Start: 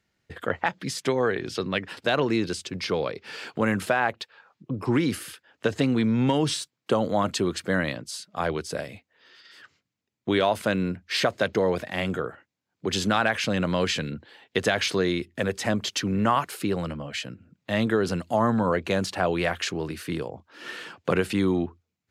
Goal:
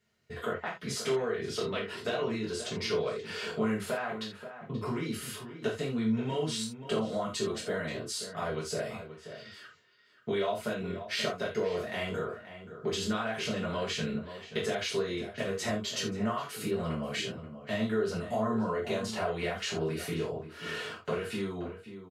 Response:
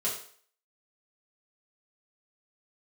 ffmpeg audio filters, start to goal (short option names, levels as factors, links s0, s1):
-filter_complex "[0:a]acompressor=threshold=0.0316:ratio=6,asplit=2[s0][s1];[s1]adelay=530.6,volume=0.282,highshelf=f=4000:g=-11.9[s2];[s0][s2]amix=inputs=2:normalize=0[s3];[1:a]atrim=start_sample=2205,afade=t=out:st=0.14:d=0.01,atrim=end_sample=6615[s4];[s3][s4]afir=irnorm=-1:irlink=0,volume=0.562"